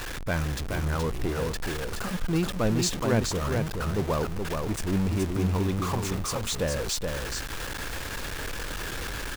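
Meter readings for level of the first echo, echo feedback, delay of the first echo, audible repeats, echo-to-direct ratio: -4.5 dB, no steady repeat, 0.424 s, 1, -4.5 dB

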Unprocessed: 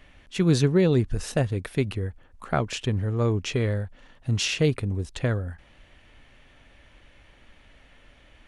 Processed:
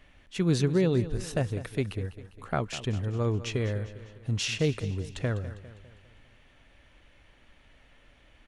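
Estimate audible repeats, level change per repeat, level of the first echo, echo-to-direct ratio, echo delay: 4, -6.0 dB, -14.5 dB, -13.5 dB, 0.201 s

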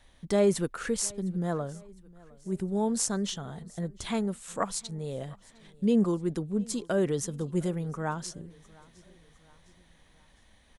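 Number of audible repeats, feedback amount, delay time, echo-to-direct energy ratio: 2, 49%, 0.708 s, -23.0 dB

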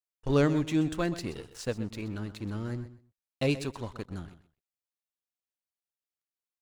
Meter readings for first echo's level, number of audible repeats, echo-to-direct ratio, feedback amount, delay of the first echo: -14.0 dB, 2, -14.0 dB, 17%, 0.127 s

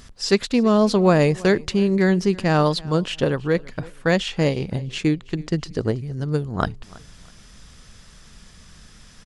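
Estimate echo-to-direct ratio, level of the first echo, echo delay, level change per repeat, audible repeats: -22.0 dB, -22.5 dB, 0.326 s, -10.5 dB, 2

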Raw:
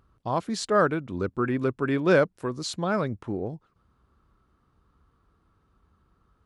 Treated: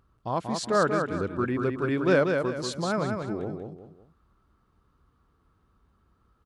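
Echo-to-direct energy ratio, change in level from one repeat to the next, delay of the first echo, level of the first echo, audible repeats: -4.5 dB, -9.0 dB, 0.187 s, -5.0 dB, 3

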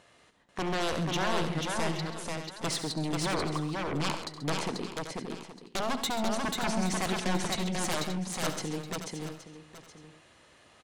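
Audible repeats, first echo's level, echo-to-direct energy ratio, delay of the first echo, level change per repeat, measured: 9, -12.0 dB, -1.0 dB, 69 ms, no steady repeat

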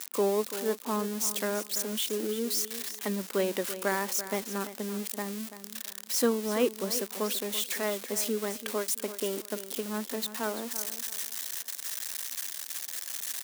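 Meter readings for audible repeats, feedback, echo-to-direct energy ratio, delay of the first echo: 2, 27%, -12.0 dB, 0.336 s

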